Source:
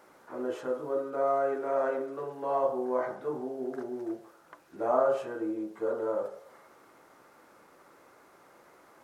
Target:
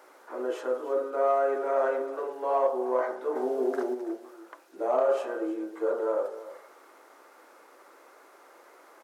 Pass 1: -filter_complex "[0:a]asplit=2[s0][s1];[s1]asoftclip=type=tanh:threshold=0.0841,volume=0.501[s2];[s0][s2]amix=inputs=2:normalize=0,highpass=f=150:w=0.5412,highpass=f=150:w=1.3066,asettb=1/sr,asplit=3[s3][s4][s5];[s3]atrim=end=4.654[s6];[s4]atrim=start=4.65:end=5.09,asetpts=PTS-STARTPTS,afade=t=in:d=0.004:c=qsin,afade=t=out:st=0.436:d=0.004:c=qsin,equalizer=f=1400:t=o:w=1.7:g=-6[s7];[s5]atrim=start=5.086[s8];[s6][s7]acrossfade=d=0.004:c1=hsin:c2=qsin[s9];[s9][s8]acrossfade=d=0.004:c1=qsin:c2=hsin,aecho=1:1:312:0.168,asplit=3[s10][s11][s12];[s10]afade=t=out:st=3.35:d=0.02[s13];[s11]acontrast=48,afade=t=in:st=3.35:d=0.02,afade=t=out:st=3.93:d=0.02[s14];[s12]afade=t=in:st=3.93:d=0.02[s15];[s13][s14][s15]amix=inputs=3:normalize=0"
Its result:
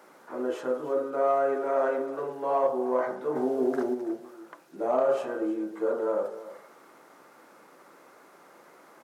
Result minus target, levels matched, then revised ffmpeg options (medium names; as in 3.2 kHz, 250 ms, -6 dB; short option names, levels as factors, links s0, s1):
125 Hz band +19.5 dB
-filter_complex "[0:a]asplit=2[s0][s1];[s1]asoftclip=type=tanh:threshold=0.0841,volume=0.501[s2];[s0][s2]amix=inputs=2:normalize=0,highpass=f=320:w=0.5412,highpass=f=320:w=1.3066,asettb=1/sr,asplit=3[s3][s4][s5];[s3]atrim=end=4.654[s6];[s4]atrim=start=4.65:end=5.09,asetpts=PTS-STARTPTS,afade=t=in:d=0.004:c=qsin,afade=t=out:st=0.436:d=0.004:c=qsin,equalizer=f=1400:t=o:w=1.7:g=-6[s7];[s5]atrim=start=5.086[s8];[s6][s7]acrossfade=d=0.004:c1=hsin:c2=qsin[s9];[s9][s8]acrossfade=d=0.004:c1=qsin:c2=hsin,aecho=1:1:312:0.168,asplit=3[s10][s11][s12];[s10]afade=t=out:st=3.35:d=0.02[s13];[s11]acontrast=48,afade=t=in:st=3.35:d=0.02,afade=t=out:st=3.93:d=0.02[s14];[s12]afade=t=in:st=3.93:d=0.02[s15];[s13][s14][s15]amix=inputs=3:normalize=0"